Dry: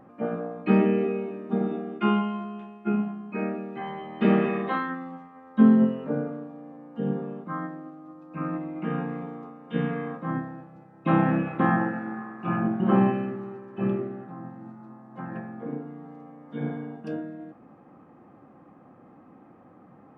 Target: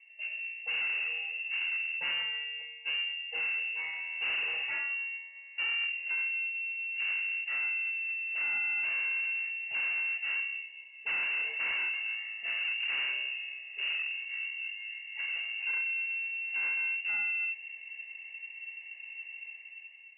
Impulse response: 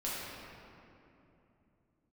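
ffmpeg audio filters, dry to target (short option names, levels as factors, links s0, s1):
-filter_complex "[0:a]dynaudnorm=f=350:g=5:m=3.76,asplit=3[s0][s1][s2];[s0]bandpass=f=300:t=q:w=8,volume=1[s3];[s1]bandpass=f=870:t=q:w=8,volume=0.501[s4];[s2]bandpass=f=2240:t=q:w=8,volume=0.355[s5];[s3][s4][s5]amix=inputs=3:normalize=0,asoftclip=type=tanh:threshold=0.0188,lowpass=f=2600:t=q:w=0.5098,lowpass=f=2600:t=q:w=0.6013,lowpass=f=2600:t=q:w=0.9,lowpass=f=2600:t=q:w=2.563,afreqshift=-3000,volume=1.58"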